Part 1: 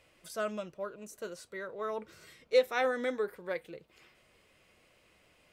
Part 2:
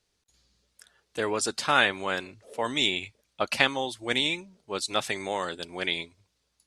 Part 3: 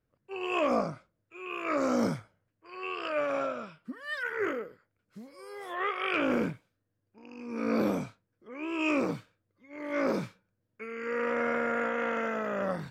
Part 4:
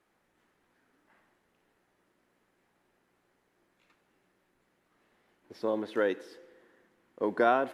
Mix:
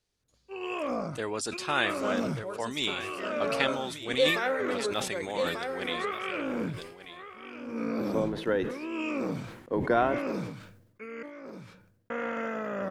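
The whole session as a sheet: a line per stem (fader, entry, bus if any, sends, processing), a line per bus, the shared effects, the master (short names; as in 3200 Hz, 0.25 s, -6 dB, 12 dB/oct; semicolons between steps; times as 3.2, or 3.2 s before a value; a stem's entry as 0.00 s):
-1.5 dB, 1.65 s, no send, echo send -5.5 dB, wow and flutter 93 cents
-6.5 dB, 0.00 s, no send, echo send -13 dB, dry
-2.5 dB, 0.20 s, muted 11.23–12.1, no send, echo send -11.5 dB, limiter -22.5 dBFS, peak gain reduction 5 dB
-1.0 dB, 2.50 s, no send, no echo send, octaver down 1 oct, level -6 dB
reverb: off
echo: echo 1.189 s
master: low shelf 320 Hz +3.5 dB; sustainer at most 64 dB/s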